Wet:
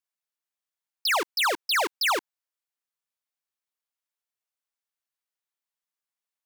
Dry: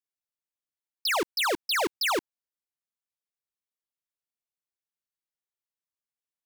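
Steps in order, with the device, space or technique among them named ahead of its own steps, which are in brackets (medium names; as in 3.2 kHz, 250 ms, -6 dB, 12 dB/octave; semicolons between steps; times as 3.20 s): filter by subtraction (in parallel: low-pass 1 kHz 12 dB/octave + polarity flip); on the sum: trim +1.5 dB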